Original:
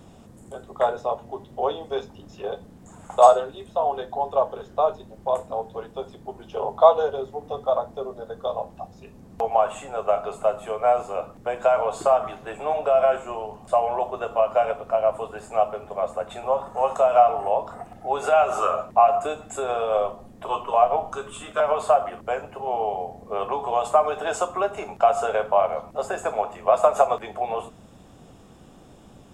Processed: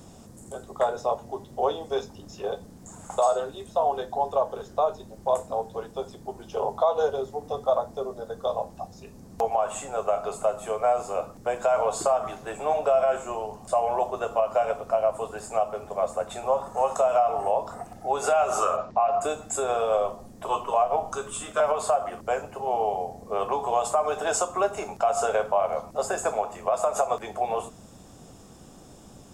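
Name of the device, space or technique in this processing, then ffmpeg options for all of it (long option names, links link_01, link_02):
over-bright horn tweeter: -filter_complex "[0:a]asplit=3[link_01][link_02][link_03];[link_01]afade=type=out:start_time=18.76:duration=0.02[link_04];[link_02]lowpass=frequency=5400:width=0.5412,lowpass=frequency=5400:width=1.3066,afade=type=in:start_time=18.76:duration=0.02,afade=type=out:start_time=19.2:duration=0.02[link_05];[link_03]afade=type=in:start_time=19.2:duration=0.02[link_06];[link_04][link_05][link_06]amix=inputs=3:normalize=0,highshelf=frequency=4100:width_type=q:width=1.5:gain=6.5,alimiter=limit=-13dB:level=0:latency=1:release=159"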